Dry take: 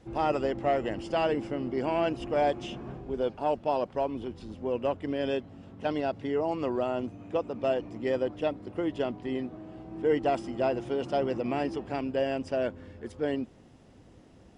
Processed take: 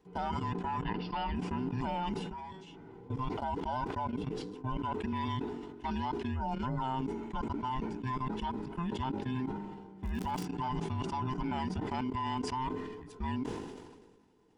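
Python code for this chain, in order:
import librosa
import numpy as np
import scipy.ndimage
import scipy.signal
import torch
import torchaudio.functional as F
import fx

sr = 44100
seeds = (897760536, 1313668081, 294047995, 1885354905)

y = fx.band_invert(x, sr, width_hz=500)
y = fx.ellip_lowpass(y, sr, hz=4900.0, order=4, stop_db=40, at=(0.81, 1.35), fade=0.02)
y = fx.level_steps(y, sr, step_db=17)
y = fx.comb_fb(y, sr, f0_hz=190.0, decay_s=0.34, harmonics='all', damping=0.0, mix_pct=80, at=(2.18, 2.66), fade=0.02)
y = fx.dmg_crackle(y, sr, seeds[0], per_s=170.0, level_db=-44.0, at=(10.03, 10.44), fade=0.02)
y = fx.sustainer(y, sr, db_per_s=39.0)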